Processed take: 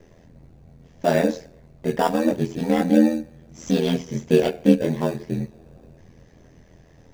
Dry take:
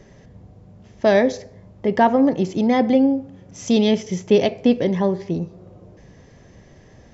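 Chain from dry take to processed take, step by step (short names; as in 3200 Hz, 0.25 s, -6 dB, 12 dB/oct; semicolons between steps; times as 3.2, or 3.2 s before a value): in parallel at -8.5 dB: sample-and-hold 21×; on the sum: chorus voices 4, 0.29 Hz, delay 22 ms, depth 2.4 ms; ring modulator 41 Hz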